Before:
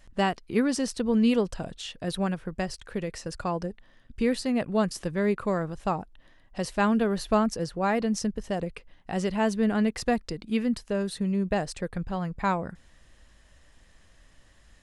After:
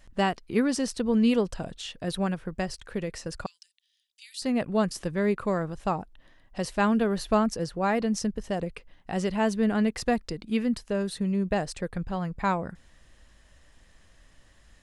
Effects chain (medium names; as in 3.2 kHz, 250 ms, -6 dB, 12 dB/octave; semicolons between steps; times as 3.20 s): 3.46–4.42 s: inverse Chebyshev high-pass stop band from 740 Hz, stop band 70 dB